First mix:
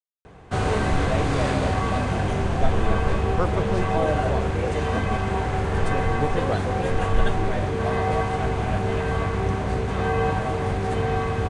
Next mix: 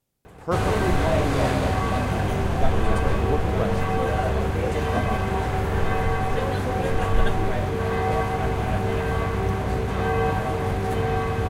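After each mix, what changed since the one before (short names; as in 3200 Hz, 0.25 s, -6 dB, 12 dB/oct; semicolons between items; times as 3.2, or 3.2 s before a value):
speech: entry -2.90 s; master: remove steep low-pass 9700 Hz 48 dB/oct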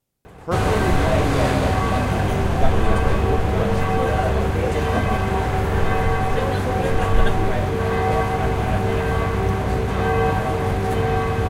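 background +3.5 dB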